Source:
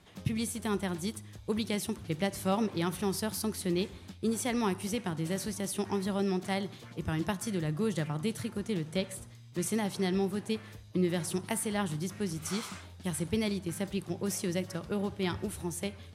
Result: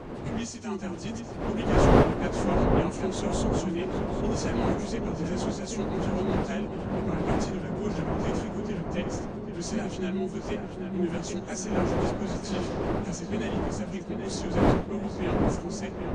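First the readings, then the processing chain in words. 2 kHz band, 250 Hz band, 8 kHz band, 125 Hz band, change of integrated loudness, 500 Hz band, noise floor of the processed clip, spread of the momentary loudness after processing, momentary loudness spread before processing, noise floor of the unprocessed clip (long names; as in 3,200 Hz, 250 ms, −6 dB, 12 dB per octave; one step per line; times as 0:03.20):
+3.0 dB, +4.0 dB, −2.0 dB, +5.5 dB, +4.5 dB, +6.0 dB, −38 dBFS, 10 LU, 6 LU, −51 dBFS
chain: partials spread apart or drawn together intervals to 89%
wind on the microphone 500 Hz −31 dBFS
feedback echo with a low-pass in the loop 784 ms, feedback 65%, low-pass 1,800 Hz, level −5 dB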